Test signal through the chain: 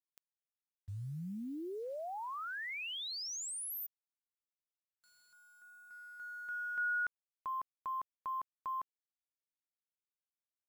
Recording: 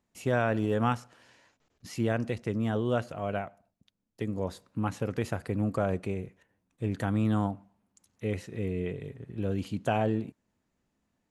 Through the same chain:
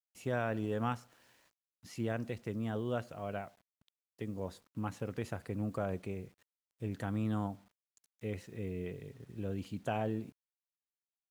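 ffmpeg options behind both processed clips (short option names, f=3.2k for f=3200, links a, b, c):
-af "acrusher=bits=9:mix=0:aa=0.000001,volume=-7.5dB"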